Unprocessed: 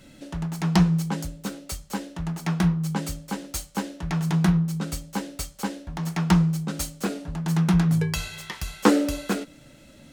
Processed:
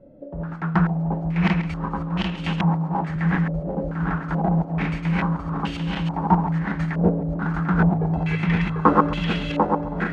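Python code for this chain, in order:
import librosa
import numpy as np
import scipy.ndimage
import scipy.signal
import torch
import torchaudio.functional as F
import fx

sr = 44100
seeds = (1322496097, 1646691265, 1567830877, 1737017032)

p1 = fx.reverse_delay_fb(x, sr, ms=372, feedback_pct=76, wet_db=-1.0)
p2 = fx.highpass(p1, sr, hz=92.0, slope=12, at=(2.61, 3.16))
p3 = p2 + fx.echo_single(p2, sr, ms=135, db=-14.5, dry=0)
p4 = fx.filter_held_lowpass(p3, sr, hz=2.3, low_hz=570.0, high_hz=2900.0)
y = p4 * 10.0 ** (-2.5 / 20.0)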